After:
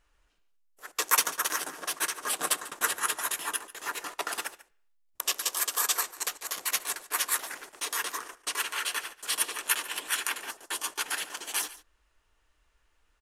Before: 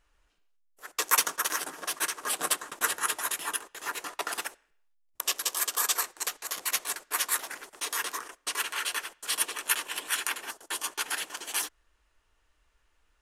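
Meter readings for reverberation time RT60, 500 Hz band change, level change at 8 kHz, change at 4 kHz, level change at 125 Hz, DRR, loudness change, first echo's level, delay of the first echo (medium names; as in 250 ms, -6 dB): no reverb, 0.0 dB, 0.0 dB, 0.0 dB, no reading, no reverb, 0.0 dB, -18.0 dB, 143 ms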